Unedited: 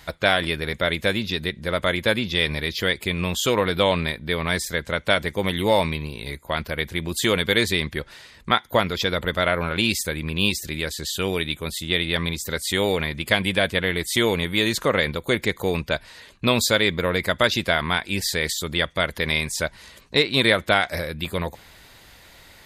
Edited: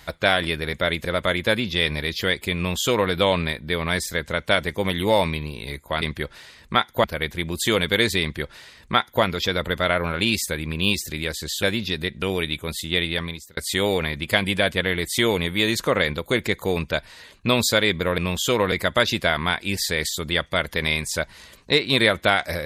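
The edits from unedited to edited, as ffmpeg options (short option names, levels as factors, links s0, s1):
-filter_complex "[0:a]asplit=9[s0][s1][s2][s3][s4][s5][s6][s7][s8];[s0]atrim=end=1.052[s9];[s1]atrim=start=1.638:end=6.612[s10];[s2]atrim=start=7.778:end=8.802[s11];[s3]atrim=start=6.608:end=11.202[s12];[s4]atrim=start=1.048:end=1.642[s13];[s5]atrim=start=11.198:end=12.55,asetpts=PTS-STARTPTS,afade=t=out:st=0.832:d=0.52[s14];[s6]atrim=start=12.55:end=17.162,asetpts=PTS-STARTPTS,afade=t=in:d=0.004:c=hsin[s15];[s7]atrim=start=3.158:end=3.702[s16];[s8]atrim=start=17.158[s17];[s9][s10]acrossfade=d=0.004:c1=hsin:c2=hsin[s18];[s18][s11]acrossfade=d=0.004:c1=hsin:c2=hsin[s19];[s19][s12]acrossfade=d=0.004:c1=hsin:c2=hsin[s20];[s20][s13]acrossfade=d=0.004:c1=hsin:c2=hsin[s21];[s14][s15]concat=n=2:v=0:a=1[s22];[s21][s22]acrossfade=d=0.004:c1=hsin:c2=hsin[s23];[s23][s16]acrossfade=d=0.004:c1=hsin:c2=hsin[s24];[s24][s17]acrossfade=d=0.004:c1=hsin:c2=hsin"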